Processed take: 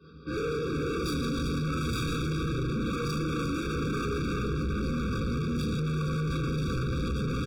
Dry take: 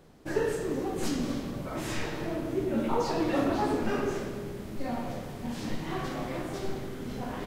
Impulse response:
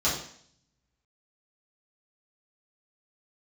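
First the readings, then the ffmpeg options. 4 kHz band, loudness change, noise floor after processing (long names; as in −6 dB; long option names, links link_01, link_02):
+3.5 dB, +1.5 dB, −33 dBFS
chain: -filter_complex "[0:a]acrossover=split=490[link_01][link_02];[link_01]aeval=exprs='val(0)*(1-0.5/2+0.5/2*cos(2*PI*6.9*n/s))':channel_layout=same[link_03];[link_02]aeval=exprs='val(0)*(1-0.5/2-0.5/2*cos(2*PI*6.9*n/s))':channel_layout=same[link_04];[link_03][link_04]amix=inputs=2:normalize=0,lowshelf=frequency=450:gain=-8,aecho=1:1:377|754|1131|1508|1885|2262:0.501|0.246|0.12|0.059|0.0289|0.0142[link_05];[1:a]atrim=start_sample=2205,atrim=end_sample=4410[link_06];[link_05][link_06]afir=irnorm=-1:irlink=0,asubboost=boost=5.5:cutoff=180,asuperstop=centerf=2000:order=4:qfactor=2.6,dynaudnorm=framelen=190:gausssize=9:maxgain=9dB,aresample=11025,aresample=44100,alimiter=limit=-11dB:level=0:latency=1,acontrast=74,asoftclip=type=hard:threshold=-22.5dB,afftfilt=real='re*eq(mod(floor(b*sr/1024/550),2),0)':imag='im*eq(mod(floor(b*sr/1024/550),2),0)':win_size=1024:overlap=0.75,volume=-5.5dB"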